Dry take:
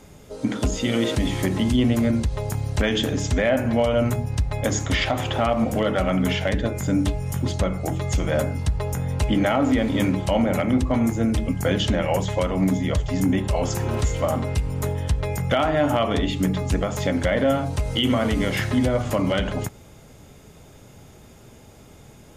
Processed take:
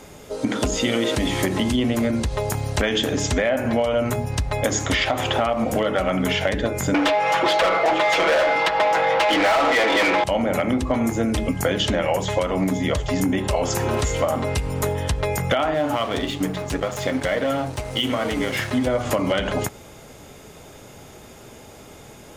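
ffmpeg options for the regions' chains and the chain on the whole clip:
ffmpeg -i in.wav -filter_complex "[0:a]asettb=1/sr,asplit=3[link_01][link_02][link_03];[link_01]atrim=end=6.944[link_04];[link_02]atrim=start=6.94:end=10.24,asetpts=PTS-STARTPTS,afade=type=in:duration=0.004:curve=qsin,afade=type=out:start_time=3.296:duration=0.004:curve=qsin,acrossover=split=360 4200:gain=0.0794 1 0.0631[link_05][link_06][link_07];[link_05][link_06][link_07]amix=inputs=3:normalize=0,aecho=1:1:6.1:0.88,atrim=end_sample=145530,asplit=2[link_08][link_09];[link_09]highpass=frequency=720:poles=1,volume=30dB,asoftclip=type=tanh:threshold=-8dB[link_10];[link_08][link_10]amix=inputs=2:normalize=0,lowpass=frequency=3500:poles=1,volume=-6dB[link_11];[link_03]atrim=start=10.236[link_12];[link_04][link_11]acrossfade=duration=0.004:curve1=hsin:curve2=qsin[link_13];[link_13][link_12]acrossfade=duration=0.004:curve1=qsin:curve2=hsin,asettb=1/sr,asplit=3[link_14][link_15][link_16];[link_14]atrim=end=15.744[link_17];[link_15]atrim=start=15.74:end=18.87,asetpts=PTS-STARTPTS,afade=type=in:duration=0.004:curve=qsin,afade=type=out:start_time=3.126:duration=0.004:curve=qsin,flanger=delay=6.3:depth=1.9:regen=49:speed=1.2:shape=sinusoidal,aeval=exprs='sgn(val(0))*max(abs(val(0))-0.01,0)':channel_layout=same[link_18];[link_16]atrim=start=18.866[link_19];[link_17][link_18]acrossfade=duration=0.004:curve1=hsin:curve2=qsin[link_20];[link_20][link_19]acrossfade=duration=0.004:curve1=qsin:curve2=hsin,bass=frequency=250:gain=-8,treble=frequency=4000:gain=-1,acompressor=threshold=-25dB:ratio=6,volume=7.5dB" out.wav

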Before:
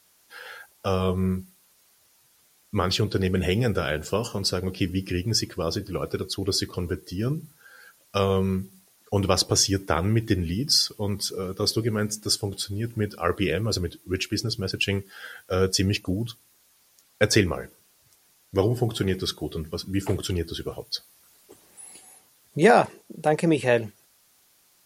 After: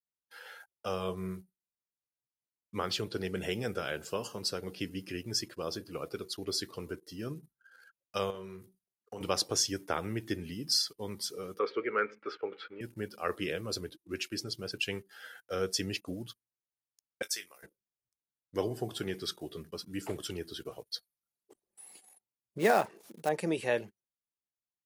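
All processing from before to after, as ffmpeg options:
ffmpeg -i in.wav -filter_complex "[0:a]asettb=1/sr,asplit=3[link_01][link_02][link_03];[link_01]atrim=end=8.304[link_04];[link_02]atrim=start=8.3:end=9.21,asetpts=PTS-STARTPTS,afade=type=in:duration=0.004:curve=qsin,afade=type=out:start_time=0.906:duration=0.004:curve=qsin,highpass=frequency=84:poles=1,acompressor=threshold=-29dB:ratio=4:attack=3.2:release=140:knee=1:detection=peak,asplit=2[link_05][link_06];[link_06]adelay=45,volume=-7.5dB[link_07];[link_05][link_07]amix=inputs=2:normalize=0,atrim=end_sample=40131[link_08];[link_03]atrim=start=9.206[link_09];[link_04][link_08]acrossfade=duration=0.004:curve1=hsin:curve2=qsin[link_10];[link_10][link_09]acrossfade=duration=0.004:curve1=qsin:curve2=hsin,asettb=1/sr,asplit=3[link_11][link_12][link_13];[link_11]atrim=end=11.594[link_14];[link_12]atrim=start=11.59:end=12.81,asetpts=PTS-STARTPTS,afade=type=in:duration=0.004:curve=qsin,afade=type=out:start_time=1.216:duration=0.004:curve=qsin,highpass=440,equalizer=frequency=460:width_type=q:width=4:gain=8,equalizer=frequency=680:width_type=q:width=4:gain=-7,equalizer=frequency=1300:width_type=q:width=4:gain=10,equalizer=frequency=2300:width_type=q:width=4:gain=10,lowpass=frequency=2500:width=0.5412,lowpass=frequency=2500:width=1.3066,acontrast=24[link_15];[link_13]atrim=start=12.806[link_16];[link_14][link_15]acrossfade=duration=0.004:curve1=hsin:curve2=qsin[link_17];[link_17][link_16]acrossfade=duration=0.004:curve1=qsin:curve2=hsin,asettb=1/sr,asplit=3[link_18][link_19][link_20];[link_18]atrim=end=17.224[link_21];[link_19]atrim=start=17.22:end=17.63,asetpts=PTS-STARTPTS,afade=type=in:duration=0.004:curve=qsin,afade=type=out:start_time=0.406:duration=0.004:curve=qsin,aderivative,asplit=2[link_22][link_23];[link_23]adelay=22,volume=-12dB[link_24];[link_22][link_24]amix=inputs=2:normalize=0,atrim=end_sample=18081[link_25];[link_20]atrim=start=17.626[link_26];[link_21][link_25]acrossfade=duration=0.004:curve1=hsin:curve2=qsin[link_27];[link_27][link_26]acrossfade=duration=0.004:curve1=qsin:curve2=hsin,asettb=1/sr,asplit=3[link_28][link_29][link_30];[link_28]atrim=end=22.584[link_31];[link_29]atrim=start=22.58:end=23.29,asetpts=PTS-STARTPTS,afade=type=in:duration=0.004:curve=qsin,afade=type=out:start_time=0.706:duration=0.004:curve=qsin,acompressor=mode=upward:threshold=-35dB:ratio=2.5:attack=3.2:release=140:knee=2.83:detection=peak,acrusher=bits=4:mode=log:mix=0:aa=0.000001,adynamicequalizer=threshold=0.0178:dfrequency=2900:dqfactor=0.7:tfrequency=2900:tqfactor=0.7:attack=5:release=100:ratio=0.375:range=2.5:mode=cutabove:tftype=highshelf[link_32];[link_30]atrim=start=23.286[link_33];[link_31][link_32]acrossfade=duration=0.004:curve1=hsin:curve2=qsin[link_34];[link_34][link_33]acrossfade=duration=0.004:curve1=qsin:curve2=hsin,highpass=frequency=280:poles=1,anlmdn=0.00398,volume=-8dB" out.wav

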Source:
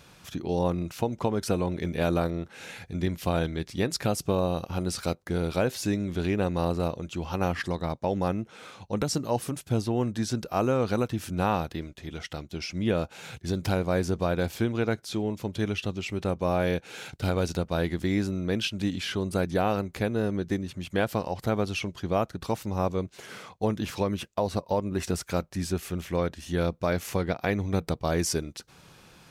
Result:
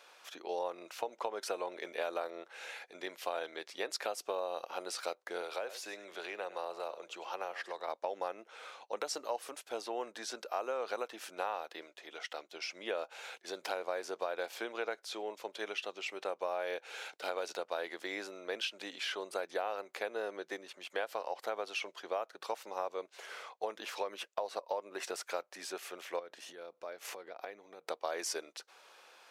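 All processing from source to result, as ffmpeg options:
ffmpeg -i in.wav -filter_complex "[0:a]asettb=1/sr,asplit=3[link_01][link_02][link_03];[link_01]atrim=end=5.414[link_04];[link_02]atrim=start=5.41:end=7.88,asetpts=PTS-STARTPTS,afade=type=in:duration=0.004:curve=qsin,afade=type=out:start_time=2.466:duration=0.004:curve=qsin,aecho=1:1:99:0.15,atrim=end_sample=108927,acrossover=split=230|580[link_05][link_06][link_07];[link_05]acompressor=threshold=-34dB:ratio=4[link_08];[link_06]acompressor=threshold=-37dB:ratio=4[link_09];[link_07]acompressor=threshold=-36dB:ratio=4[link_10];[link_08][link_09][link_10]amix=inputs=3:normalize=0,equalizer=frequency=260:width_type=o:width=0.2:gain=-6.5[link_11];[link_03]atrim=start=7.876[link_12];[link_04][link_11]acrossfade=duration=0.004:curve1=hsin:curve2=qsin[link_13];[link_13][link_12]acrossfade=duration=0.004:curve1=qsin:curve2=hsin,asettb=1/sr,asplit=3[link_14][link_15][link_16];[link_14]atrim=end=26.194[link_17];[link_15]atrim=start=26.19:end=27.89,asetpts=PTS-STARTPTS,afade=type=in:duration=0.004:curve=qsin,afade=type=out:start_time=1.696:duration=0.004:curve=qsin,lowshelf=frequency=320:gain=10,acompressor=threshold=-30dB:ratio=12:attack=3.2:release=140:knee=1:detection=peak[link_18];[link_16]atrim=start=27.886[link_19];[link_17][link_18]acrossfade=duration=0.004:curve1=hsin:curve2=qsin[link_20];[link_20][link_19]acrossfade=duration=0.004:curve1=qsin:curve2=hsin,highpass=frequency=490:width=0.5412,highpass=frequency=490:width=1.3066,highshelf=frequency=5800:gain=-8,acompressor=threshold=-30dB:ratio=6,volume=-2dB" out.wav

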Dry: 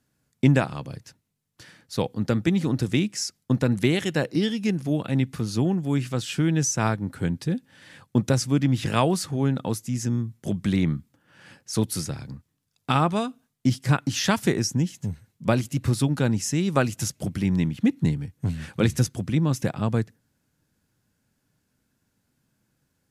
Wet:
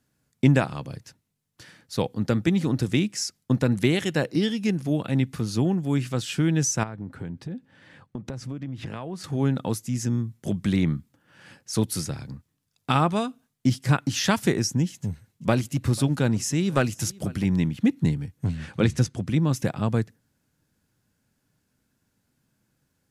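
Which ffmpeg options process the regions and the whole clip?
ffmpeg -i in.wav -filter_complex "[0:a]asettb=1/sr,asplit=3[link_01][link_02][link_03];[link_01]atrim=end=6.834[link_04];[link_02]atrim=start=6.83:end=9.24,asetpts=PTS-STARTPTS,afade=type=in:duration=0.004:curve=qsin,afade=type=out:start_time=2.406:duration=0.004:curve=qsin,lowpass=frequency=1700:poles=1,acompressor=threshold=-29dB:ratio=12:attack=3.2:release=140:knee=1:detection=peak[link_05];[link_03]atrim=start=9.236[link_06];[link_04][link_05]acrossfade=duration=0.004:curve1=hsin:curve2=qsin[link_07];[link_07][link_06]acrossfade=duration=0.004:curve1=qsin:curve2=hsin,asettb=1/sr,asplit=3[link_08][link_09][link_10];[link_08]atrim=end=14.924[link_11];[link_09]atrim=start=14.92:end=17.45,asetpts=PTS-STARTPTS,afade=type=in:duration=0.004:curve=qsin,afade=type=out:start_time=2.526:duration=0.004:curve=qsin,aecho=1:1:491:0.0708,atrim=end_sample=111573,aeval=exprs='clip(val(0),-1,0.112)':channel_layout=same[link_12];[link_10]atrim=start=17.446[link_13];[link_11][link_12]acrossfade=duration=0.004:curve1=hsin:curve2=qsin[link_14];[link_14][link_13]acrossfade=duration=0.004:curve1=qsin:curve2=hsin,asettb=1/sr,asplit=3[link_15][link_16][link_17];[link_15]atrim=end=18.474[link_18];[link_16]atrim=start=18.47:end=19.27,asetpts=PTS-STARTPTS,afade=type=in:duration=0.004:curve=qsin,afade=type=out:start_time=0.796:duration=0.004:curve=qsin,lowpass=9800,highshelf=frequency=6300:gain=-5.5,acompressor=mode=upward:threshold=-37dB:ratio=2.5:attack=3.2:release=140:knee=2.83:detection=peak[link_19];[link_17]atrim=start=19.266[link_20];[link_18][link_19]acrossfade=duration=0.004:curve1=hsin:curve2=qsin[link_21];[link_21][link_20]acrossfade=duration=0.004:curve1=qsin:curve2=hsin" out.wav

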